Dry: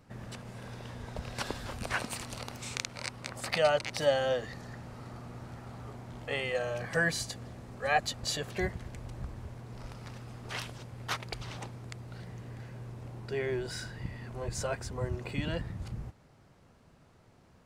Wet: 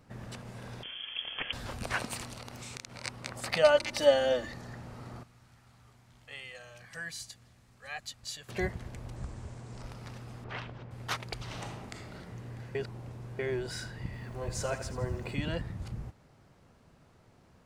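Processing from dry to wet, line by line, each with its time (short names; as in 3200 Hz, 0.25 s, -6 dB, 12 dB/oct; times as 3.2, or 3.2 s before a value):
0.83–1.53 inverted band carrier 3300 Hz
2.27–3.05 compressor 4:1, threshold -40 dBFS
3.63–4.52 comb 3.4 ms, depth 74%
5.23–8.49 passive tone stack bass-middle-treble 5-5-5
9.16–9.82 synth low-pass 7900 Hz, resonance Q 2.6
10.44–10.91 LPF 2400 Hz
11.45–12.13 reverb throw, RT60 1.2 s, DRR 0 dB
12.75–13.39 reverse
14.05–15.35 lo-fi delay 82 ms, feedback 55%, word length 10-bit, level -11 dB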